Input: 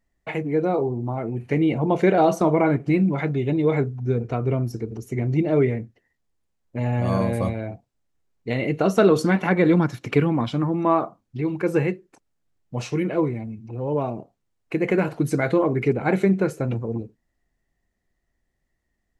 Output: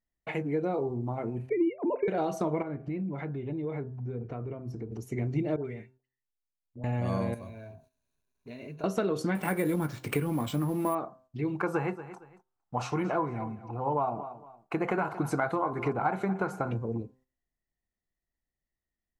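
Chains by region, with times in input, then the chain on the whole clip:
0:01.49–0:02.08: three sine waves on the formant tracks + low-shelf EQ 310 Hz +11.5 dB + notch filter 1,800 Hz, Q 6.6
0:02.62–0:04.92: low-pass filter 1,600 Hz 6 dB per octave + downward compressor 3 to 1, threshold −28 dBFS
0:05.56–0:06.84: tuned comb filter 900 Hz, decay 0.22 s, mix 70% + all-pass dispersion highs, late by 90 ms, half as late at 910 Hz
0:07.34–0:08.84: mu-law and A-law mismatch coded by mu + EQ curve with evenly spaced ripples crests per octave 1.5, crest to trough 11 dB + downward compressor 2 to 1, threshold −47 dBFS
0:09.35–0:10.95: mu-law and A-law mismatch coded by mu + double-tracking delay 20 ms −12 dB + bad sample-rate conversion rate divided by 4×, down none, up hold
0:11.60–0:16.71: flat-topped bell 1,000 Hz +14 dB 1.3 octaves + repeating echo 230 ms, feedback 29%, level −18.5 dB
whole clip: downward compressor, threshold −20 dBFS; hum removal 129.3 Hz, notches 13; noise gate −54 dBFS, range −10 dB; level −5 dB

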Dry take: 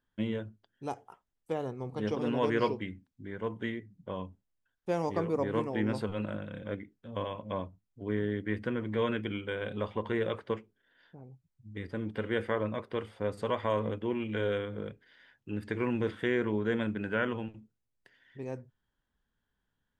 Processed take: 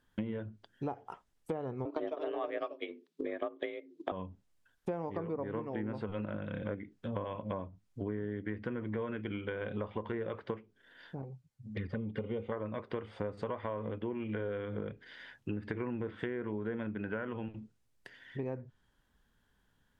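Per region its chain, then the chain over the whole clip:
0:01.85–0:04.12: parametric band 3,400 Hz +7.5 dB 1.1 octaves + frequency shifter +160 Hz + transient designer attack +7 dB, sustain −6 dB
0:11.22–0:12.52: flanger swept by the level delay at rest 10.1 ms, full sweep at −32.5 dBFS + notch comb filter 330 Hz
whole clip: downward compressor 8 to 1, threshold −43 dBFS; treble cut that deepens with the level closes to 1,600 Hz, closed at −41 dBFS; level +9 dB

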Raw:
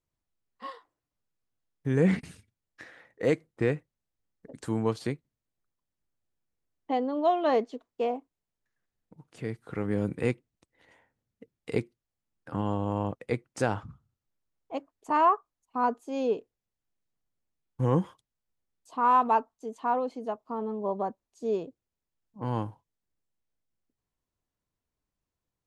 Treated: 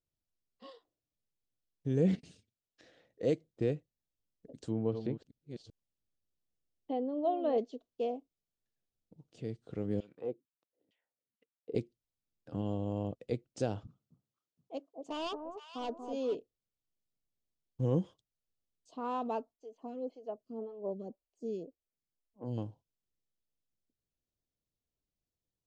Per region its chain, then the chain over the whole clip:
0:02.15–0:02.84: low-shelf EQ 160 Hz −10.5 dB + downward compressor 5 to 1, threshold −43 dBFS
0:04.54–0:07.58: delay that plays each chunk backwards 387 ms, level −8.5 dB + treble cut that deepens with the level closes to 2,200 Hz, closed at −26 dBFS
0:10.00–0:11.75: leveller curve on the samples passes 1 + auto-filter band-pass saw down 2.2 Hz 210–3,300 Hz
0:13.87–0:16.35: high-pass filter 240 Hz + hard clipping −23 dBFS + delay that swaps between a low-pass and a high-pass 235 ms, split 990 Hz, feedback 57%, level −5 dB
0:19.52–0:22.58: notch filter 3,700 Hz, Q 5.3 + phaser with staggered stages 1.9 Hz
whole clip: low-pass filter 7,100 Hz 24 dB per octave; flat-topped bell 1,400 Hz −12.5 dB; level −5 dB

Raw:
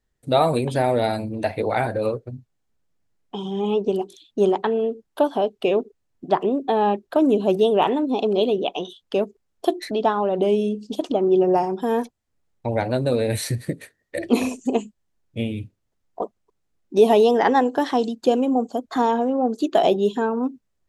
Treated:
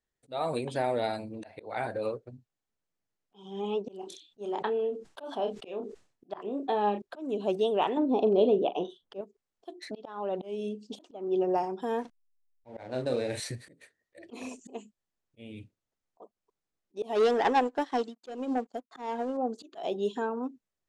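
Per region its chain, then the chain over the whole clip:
0:04.00–0:07.02: double-tracking delay 29 ms −8.5 dB + level that may fall only so fast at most 120 dB per second
0:07.97–0:09.21: tilt shelving filter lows +8 dB, about 1,400 Hz + double-tracking delay 41 ms −12.5 dB
0:12.01–0:13.40: double-tracking delay 39 ms −6 dB + slack as between gear wheels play −34 dBFS
0:17.15–0:19.37: leveller curve on the samples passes 2 + expander for the loud parts 2.5 to 1, over −23 dBFS
whole clip: volume swells 262 ms; low-pass filter 9,300 Hz 24 dB per octave; low-shelf EQ 190 Hz −10 dB; level −7.5 dB

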